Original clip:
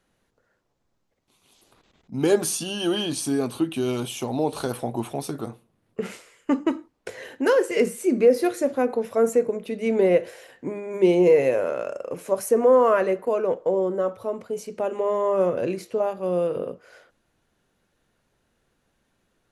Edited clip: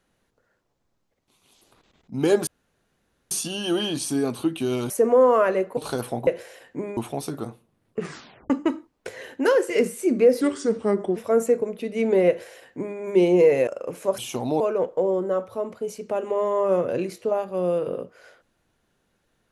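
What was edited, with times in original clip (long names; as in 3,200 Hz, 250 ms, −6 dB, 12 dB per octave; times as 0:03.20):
0:02.47: splice in room tone 0.84 s
0:04.06–0:04.48: swap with 0:12.42–0:13.29
0:06.00: tape stop 0.51 s
0:08.42–0:09.03: play speed 81%
0:10.15–0:10.85: duplicate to 0:04.98
0:11.54–0:11.91: remove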